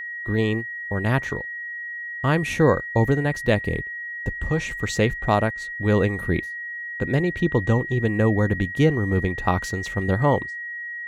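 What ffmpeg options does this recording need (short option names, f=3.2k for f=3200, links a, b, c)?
-af "bandreject=f=1.9k:w=30"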